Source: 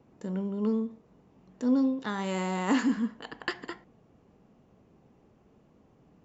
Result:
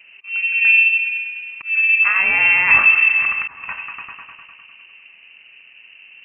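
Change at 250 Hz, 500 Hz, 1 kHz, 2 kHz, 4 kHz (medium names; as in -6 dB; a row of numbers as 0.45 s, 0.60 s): under -15 dB, -7.0 dB, +8.5 dB, +27.5 dB, +11.0 dB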